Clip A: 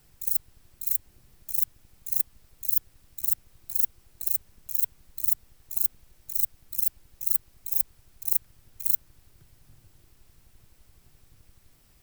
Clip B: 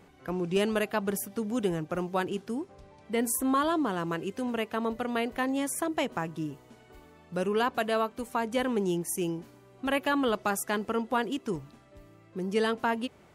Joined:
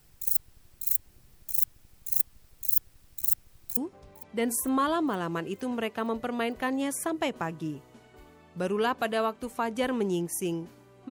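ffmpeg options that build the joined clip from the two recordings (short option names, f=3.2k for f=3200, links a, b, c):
-filter_complex "[0:a]apad=whole_dur=11.1,atrim=end=11.1,atrim=end=3.772[a];[1:a]atrim=start=2.528:end=9.86[b];[a][b]acrossfade=d=0.004:c1=hsin:c2=hsin,asplit=2[c][d];[d]afade=t=in:st=3.44:d=0.01,afade=t=out:st=3.77:d=0.01,aecho=0:1:460|920|1380|1840|2300|2760:0.125893|0.0818302|0.0531896|0.0345732|0.0224726|0.0146072[e];[c][e]amix=inputs=2:normalize=0"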